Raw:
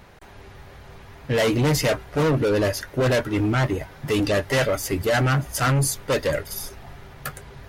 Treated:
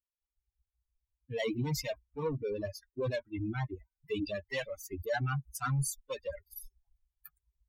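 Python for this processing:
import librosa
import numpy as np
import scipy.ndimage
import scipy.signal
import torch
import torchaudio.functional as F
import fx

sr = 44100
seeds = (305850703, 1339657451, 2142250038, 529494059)

y = fx.bin_expand(x, sr, power=3.0)
y = y * librosa.db_to_amplitude(-7.5)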